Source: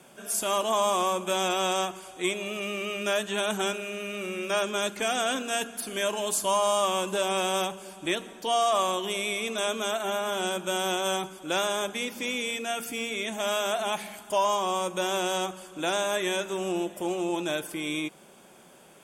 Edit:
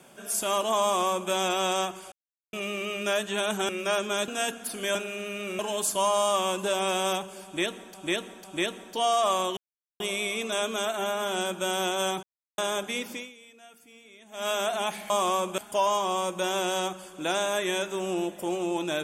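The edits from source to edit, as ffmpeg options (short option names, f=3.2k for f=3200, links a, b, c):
-filter_complex "[0:a]asplit=16[a][b][c][d][e][f][g][h][i][j][k][l][m][n][o][p];[a]atrim=end=2.12,asetpts=PTS-STARTPTS,afade=t=out:st=2.116:d=0.004:c=hsin[q];[b]atrim=start=2.12:end=2.53,asetpts=PTS-STARTPTS,volume=0[r];[c]atrim=start=2.53:end=3.692,asetpts=PTS-STARTPTS,afade=t=in:d=0.004:c=hsin[s];[d]atrim=start=4.328:end=4.922[t];[e]atrim=start=5.408:end=6.082[u];[f]atrim=start=3.688:end=4.332[v];[g]atrim=start=6.078:end=8.432[w];[h]atrim=start=7.928:end=8.432[x];[i]atrim=start=7.928:end=9.06,asetpts=PTS-STARTPTS,afade=t=out:st=1.128:d=0.004:c=hsin,apad=pad_dur=0.43[y];[j]atrim=start=9.06:end=11.29,asetpts=PTS-STARTPTS,afade=t=in:d=0.004:c=hsin,afade=t=out:st=2.226:d=0.004:c=hsin[z];[k]atrim=start=11.29:end=11.64,asetpts=PTS-STARTPTS,volume=0[aa];[l]atrim=start=11.64:end=12.42,asetpts=PTS-STARTPTS,afade=t=in:d=0.004:c=hsin,afade=t=out:st=0.53:d=0.25:c=qua:silence=0.0944061[ab];[m]atrim=start=12.42:end=13.3,asetpts=PTS-STARTPTS,volume=-20.5dB[ac];[n]atrim=start=13.3:end=14.162,asetpts=PTS-STARTPTS,afade=t=in:d=0.25:c=qua:silence=0.0944061[ad];[o]atrim=start=0.828:end=1.312[ae];[p]atrim=start=14.158[af];[q][r][s]concat=n=3:v=0:a=1[ag];[ag][t]acrossfade=d=0.004:c1=hsin:c2=hsin[ah];[ah][u]acrossfade=d=0.004:c1=hsin:c2=hsin[ai];[ai][v]acrossfade=d=0.004:c1=hsin:c2=hsin[aj];[aj][w]acrossfade=d=0.004:c1=hsin:c2=hsin[ak];[ak][x]acrossfade=d=0.004:c1=hsin:c2=hsin[al];[y][z][aa][ab][ac][ad]concat=n=6:v=0:a=1[am];[al][am]acrossfade=d=0.004:c1=hsin:c2=hsin[an];[an][ae]acrossfade=d=0.004:c1=hsin:c2=hsin[ao];[ao][af]acrossfade=d=0.004:c1=hsin:c2=hsin"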